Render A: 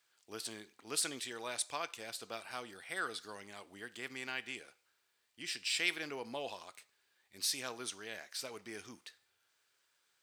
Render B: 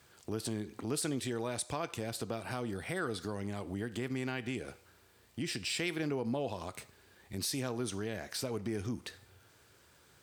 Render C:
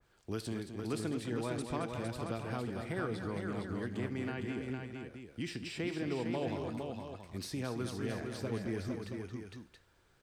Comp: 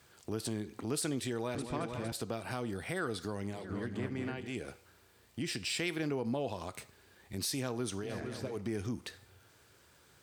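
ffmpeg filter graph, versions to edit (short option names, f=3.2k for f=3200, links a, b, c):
-filter_complex "[2:a]asplit=3[a][b][c];[1:a]asplit=4[d][e][f][g];[d]atrim=end=1.552[h];[a]atrim=start=1.548:end=2.122[i];[e]atrim=start=2.118:end=3.73[j];[b]atrim=start=3.49:end=4.57[k];[f]atrim=start=4.33:end=8.15[l];[c]atrim=start=7.99:end=8.59[m];[g]atrim=start=8.43[n];[h][i]acrossfade=d=0.004:c1=hsin:c2=hsin[o];[o][j]acrossfade=d=0.004:c1=hsin:c2=hsin[p];[p][k]acrossfade=d=0.24:c1=tri:c2=tri[q];[q][l]acrossfade=d=0.24:c1=tri:c2=tri[r];[r][m]acrossfade=d=0.16:c1=tri:c2=tri[s];[s][n]acrossfade=d=0.16:c1=tri:c2=tri"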